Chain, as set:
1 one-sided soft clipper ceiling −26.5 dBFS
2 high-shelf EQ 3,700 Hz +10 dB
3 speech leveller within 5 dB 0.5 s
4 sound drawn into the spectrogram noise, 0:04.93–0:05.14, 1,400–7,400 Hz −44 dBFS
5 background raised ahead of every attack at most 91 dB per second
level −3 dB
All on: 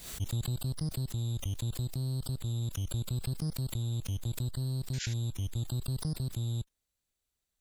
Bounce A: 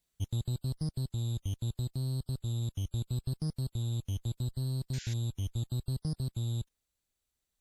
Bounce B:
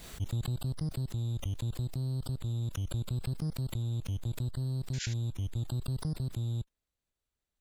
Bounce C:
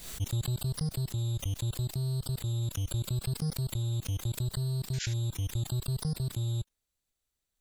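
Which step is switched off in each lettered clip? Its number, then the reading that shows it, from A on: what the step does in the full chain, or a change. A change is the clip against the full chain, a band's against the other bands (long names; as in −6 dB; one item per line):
5, 8 kHz band −4.5 dB
2, 8 kHz band −5.0 dB
1, 250 Hz band −2.0 dB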